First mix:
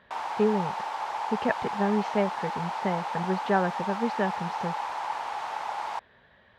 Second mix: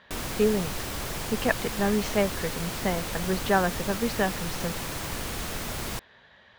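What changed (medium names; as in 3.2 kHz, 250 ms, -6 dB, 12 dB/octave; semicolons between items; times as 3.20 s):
background: remove resonant high-pass 860 Hz, resonance Q 8.1; master: remove tape spacing loss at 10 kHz 23 dB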